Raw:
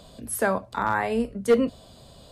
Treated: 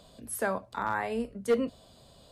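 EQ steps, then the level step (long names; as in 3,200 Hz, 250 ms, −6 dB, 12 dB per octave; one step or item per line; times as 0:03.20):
low-shelf EQ 220 Hz −3 dB
−6.0 dB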